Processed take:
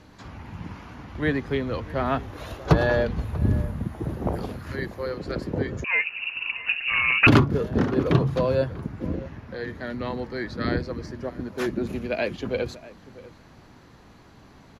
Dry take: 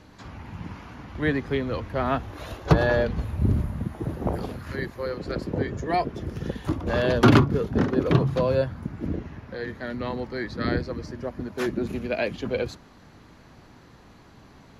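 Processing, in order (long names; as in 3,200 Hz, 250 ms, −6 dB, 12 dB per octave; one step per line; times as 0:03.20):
slap from a distant wall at 110 metres, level −18 dB
0:05.84–0:07.27: voice inversion scrambler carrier 2,800 Hz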